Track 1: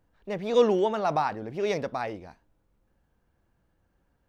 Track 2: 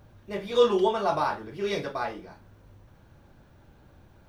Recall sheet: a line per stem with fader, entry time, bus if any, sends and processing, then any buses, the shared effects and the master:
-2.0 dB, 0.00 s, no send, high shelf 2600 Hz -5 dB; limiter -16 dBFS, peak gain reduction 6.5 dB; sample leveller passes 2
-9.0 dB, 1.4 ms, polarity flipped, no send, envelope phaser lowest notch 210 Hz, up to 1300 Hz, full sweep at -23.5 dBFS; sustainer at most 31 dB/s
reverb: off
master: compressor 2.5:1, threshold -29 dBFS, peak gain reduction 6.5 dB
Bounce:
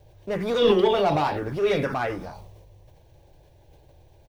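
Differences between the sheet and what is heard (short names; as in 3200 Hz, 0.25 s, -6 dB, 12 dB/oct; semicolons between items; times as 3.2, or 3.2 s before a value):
stem 2 -9.0 dB -> +2.5 dB; master: missing compressor 2.5:1, threshold -29 dBFS, peak gain reduction 6.5 dB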